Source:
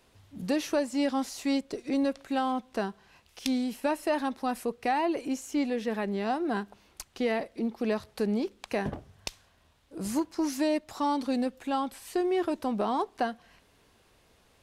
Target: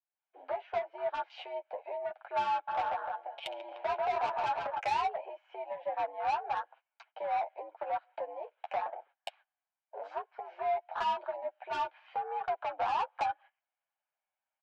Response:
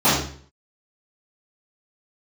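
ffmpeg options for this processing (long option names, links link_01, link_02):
-filter_complex "[0:a]agate=range=-24dB:threshold=-50dB:ratio=16:detection=peak,tiltshelf=frequency=1100:gain=3.5,acompressor=threshold=-34dB:ratio=16,asplit=3[link_01][link_02][link_03];[link_01]afade=type=out:start_time=2.67:duration=0.02[link_04];[link_02]aecho=1:1:140|301|486.2|699.1|943.9:0.631|0.398|0.251|0.158|0.1,afade=type=in:start_time=2.67:duration=0.02,afade=type=out:start_time=4.78:duration=0.02[link_05];[link_03]afade=type=in:start_time=4.78:duration=0.02[link_06];[link_04][link_05][link_06]amix=inputs=3:normalize=0,dynaudnorm=framelen=130:gausssize=3:maxgain=11.5dB,aemphasis=mode=production:type=bsi,afwtdn=0.0224,highpass=frequency=590:width_type=q:width=0.5412,highpass=frequency=590:width_type=q:width=1.307,lowpass=frequency=2700:width_type=q:width=0.5176,lowpass=frequency=2700:width_type=q:width=0.7071,lowpass=frequency=2700:width_type=q:width=1.932,afreqshift=89,aecho=1:1:1.3:0.42,asoftclip=type=tanh:threshold=-29.5dB,flanger=delay=7:depth=5.1:regen=-14:speed=0.88:shape=triangular,volume=5.5dB"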